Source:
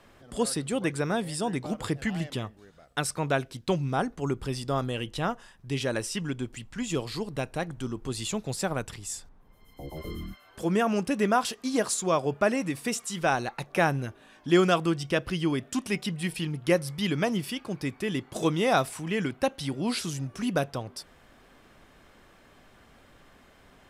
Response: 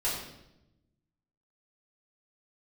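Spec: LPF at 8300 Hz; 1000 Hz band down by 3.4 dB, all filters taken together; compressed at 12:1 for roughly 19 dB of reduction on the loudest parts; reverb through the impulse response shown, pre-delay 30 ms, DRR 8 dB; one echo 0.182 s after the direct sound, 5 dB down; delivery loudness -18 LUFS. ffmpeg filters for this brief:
-filter_complex "[0:a]lowpass=8.3k,equalizer=f=1k:t=o:g=-5,acompressor=threshold=-36dB:ratio=12,aecho=1:1:182:0.562,asplit=2[a][b];[1:a]atrim=start_sample=2205,adelay=30[c];[b][c]afir=irnorm=-1:irlink=0,volume=-15.5dB[d];[a][d]amix=inputs=2:normalize=0,volume=21.5dB"

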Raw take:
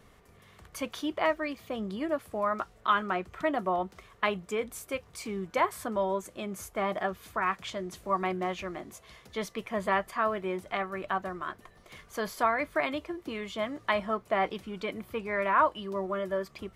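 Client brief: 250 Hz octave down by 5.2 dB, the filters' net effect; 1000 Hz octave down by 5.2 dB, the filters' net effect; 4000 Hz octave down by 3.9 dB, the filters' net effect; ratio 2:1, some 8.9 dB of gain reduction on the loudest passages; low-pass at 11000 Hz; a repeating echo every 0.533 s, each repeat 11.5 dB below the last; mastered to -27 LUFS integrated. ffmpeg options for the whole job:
-af "lowpass=11k,equalizer=f=250:t=o:g=-7,equalizer=f=1k:t=o:g=-6,equalizer=f=4k:t=o:g=-5,acompressor=threshold=-41dB:ratio=2,aecho=1:1:533|1066|1599:0.266|0.0718|0.0194,volume=15dB"

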